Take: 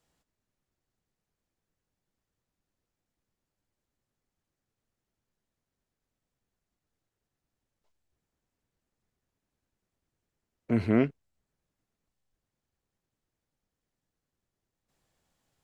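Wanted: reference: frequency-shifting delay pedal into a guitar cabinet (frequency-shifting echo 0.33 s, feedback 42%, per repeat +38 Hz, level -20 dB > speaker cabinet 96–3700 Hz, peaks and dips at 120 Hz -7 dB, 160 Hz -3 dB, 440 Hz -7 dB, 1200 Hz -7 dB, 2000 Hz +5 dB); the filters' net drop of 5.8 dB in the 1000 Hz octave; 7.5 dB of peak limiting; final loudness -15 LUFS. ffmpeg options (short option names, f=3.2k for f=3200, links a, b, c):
-filter_complex "[0:a]equalizer=f=1k:t=o:g=-6.5,alimiter=limit=-19dB:level=0:latency=1,asplit=4[a][b][c][d];[b]adelay=330,afreqshift=38,volume=-20dB[e];[c]adelay=660,afreqshift=76,volume=-27.5dB[f];[d]adelay=990,afreqshift=114,volume=-35.1dB[g];[a][e][f][g]amix=inputs=4:normalize=0,highpass=96,equalizer=f=120:t=q:w=4:g=-7,equalizer=f=160:t=q:w=4:g=-3,equalizer=f=440:t=q:w=4:g=-7,equalizer=f=1.2k:t=q:w=4:g=-7,equalizer=f=2k:t=q:w=4:g=5,lowpass=f=3.7k:w=0.5412,lowpass=f=3.7k:w=1.3066,volume=20dB"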